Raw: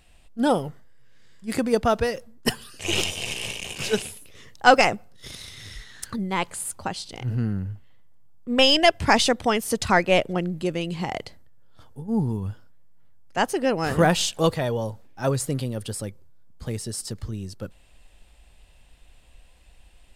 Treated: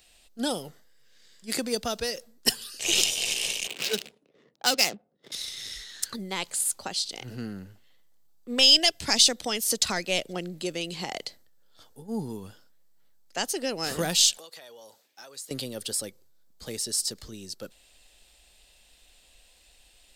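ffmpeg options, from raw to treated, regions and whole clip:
ffmpeg -i in.wav -filter_complex "[0:a]asettb=1/sr,asplit=3[link_01][link_02][link_03];[link_01]atrim=end=3.674[link_04];[link_02]atrim=start=3.67:end=5.32,asetpts=PTS-STARTPTS,afade=type=in:duration=0.004:curve=qsin,afade=type=out:start_time=1.646:duration=0.004:curve=qsin,highpass=frequency=140:width=0.5412,highpass=frequency=140:width=1.3066,adynamicsmooth=sensitivity=6:basefreq=530[link_05];[link_03]atrim=start=5.316[link_06];[link_04][link_05]acrossfade=duration=0.004:curve1=hsin:curve2=qsin[link_07];[link_07][link_06]acrossfade=duration=0.004:curve1=qsin:curve2=hsin,asettb=1/sr,asplit=3[link_08][link_09][link_10];[link_08]atrim=end=14.374[link_11];[link_09]atrim=start=14.37:end=15.51,asetpts=PTS-STARTPTS,afade=type=in:duration=0.004:curve=qsin,afade=type=out:start_time=1.136:duration=0.004:curve=qsin,highpass=frequency=910:poles=1,acompressor=threshold=-41dB:ratio=12:attack=3.2:release=140:knee=1:detection=peak[link_12];[link_10]atrim=start=15.506[link_13];[link_11][link_12]acrossfade=duration=0.004:curve1=hsin:curve2=qsin[link_14];[link_14][link_13]acrossfade=duration=0.004:curve1=qsin:curve2=hsin,bass=frequency=250:gain=-9,treble=frequency=4000:gain=11,acrossover=split=260|3000[link_15][link_16][link_17];[link_16]acompressor=threshold=-28dB:ratio=3[link_18];[link_15][link_18][link_17]amix=inputs=3:normalize=0,equalizer=frequency=100:width_type=o:width=0.67:gain=-8,equalizer=frequency=1000:width_type=o:width=0.67:gain=-4,equalizer=frequency=4000:width_type=o:width=0.67:gain=4,equalizer=frequency=10000:width_type=o:width=0.67:gain=-5,volume=-2dB" out.wav

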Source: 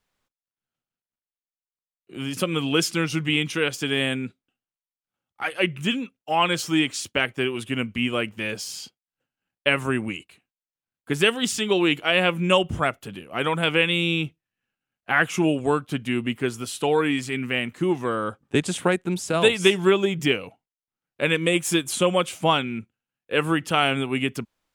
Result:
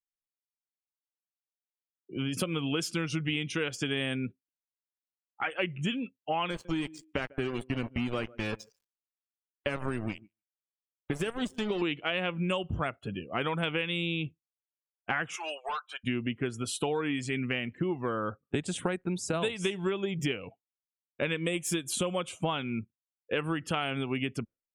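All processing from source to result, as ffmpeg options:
ffmpeg -i in.wav -filter_complex "[0:a]asettb=1/sr,asplit=3[link_01][link_02][link_03];[link_01]atrim=end=6.504[link_04];[link_02]atrim=start=6.5:end=11.82,asetpts=PTS-STARTPTS,afade=type=in:duration=0.004:curve=qsin,afade=type=out:start_time=5.316:duration=0.004:curve=qsin,acrossover=split=1600|6400[link_05][link_06][link_07];[link_05]acompressor=threshold=-23dB:ratio=4[link_08];[link_06]acompressor=threshold=-38dB:ratio=4[link_09];[link_07]acompressor=threshold=-40dB:ratio=4[link_10];[link_08][link_09][link_10]amix=inputs=3:normalize=0,aeval=exprs='val(0)*gte(abs(val(0)),0.0299)':channel_layout=same,aecho=1:1:147|294:0.0708|0.0163,atrim=end_sample=234612[link_11];[link_03]atrim=start=11.816[link_12];[link_04][link_11]acrossfade=duration=0.004:curve1=hsin:curve2=qsin[link_13];[link_13][link_12]acrossfade=duration=0.004:curve1=qsin:curve2=hsin,asettb=1/sr,asplit=3[link_14][link_15][link_16];[link_14]atrim=end=15.364[link_17];[link_15]atrim=start=15.36:end=16.04,asetpts=PTS-STARTPTS,afade=type=in:duration=0.004:curve=qsin,afade=type=out:start_time=0.676:duration=0.004:curve=qsin,highpass=frequency=740:width=0.5412,highpass=frequency=740:width=1.3066,volume=30.5dB,asoftclip=hard,volume=-30.5dB[link_18];[link_16]atrim=start=16.036[link_19];[link_17][link_18]acrossfade=duration=0.004:curve1=hsin:curve2=qsin[link_20];[link_20][link_19]acrossfade=duration=0.004:curve1=qsin:curve2=hsin,afftdn=noise_reduction=35:noise_floor=-42,lowshelf=frequency=80:gain=9.5,acompressor=threshold=-28dB:ratio=6" out.wav

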